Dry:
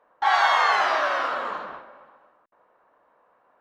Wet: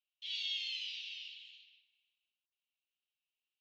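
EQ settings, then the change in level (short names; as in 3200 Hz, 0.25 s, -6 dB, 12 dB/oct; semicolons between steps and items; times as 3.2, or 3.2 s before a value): steep high-pass 2700 Hz 72 dB/oct; air absorption 140 m; high shelf 5100 Hz -11 dB; +1.0 dB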